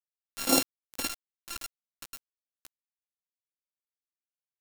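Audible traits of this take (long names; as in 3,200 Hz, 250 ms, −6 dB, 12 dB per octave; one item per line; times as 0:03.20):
a buzz of ramps at a fixed pitch in blocks of 32 samples
phaser sweep stages 2, 2.4 Hz, lowest notch 550–1,900 Hz
chopped level 6.1 Hz, depth 65%, duty 55%
a quantiser's noise floor 6 bits, dither none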